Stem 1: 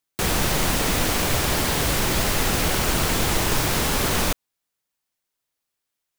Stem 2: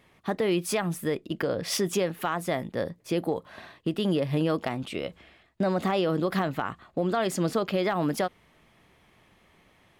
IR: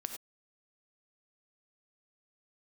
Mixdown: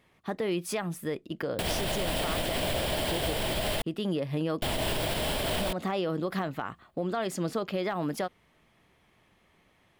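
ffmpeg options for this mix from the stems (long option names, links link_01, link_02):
-filter_complex "[0:a]equalizer=frequency=630:width_type=o:width=0.33:gain=12,equalizer=frequency=1250:width_type=o:width=0.33:gain=-6,equalizer=frequency=3150:width_type=o:width=0.33:gain=8,equalizer=frequency=6300:width_type=o:width=0.33:gain=-12,equalizer=frequency=16000:width_type=o:width=0.33:gain=-10,alimiter=limit=-14.5dB:level=0:latency=1:release=172,adelay=1400,volume=-2dB,asplit=3[link_01][link_02][link_03];[link_01]atrim=end=3.82,asetpts=PTS-STARTPTS,afade=type=out:start_time=3.816:duration=0.004:curve=hsin[link_04];[link_02]atrim=start=3.82:end=4.62,asetpts=PTS-STARTPTS,volume=0[link_05];[link_03]atrim=start=4.62,asetpts=PTS-STARTPTS,afade=type=in:duration=0.004:curve=hsin[link_06];[link_04][link_05][link_06]concat=n=3:v=0:a=1[link_07];[1:a]volume=-4.5dB[link_08];[link_07][link_08]amix=inputs=2:normalize=0,alimiter=limit=-20dB:level=0:latency=1:release=103"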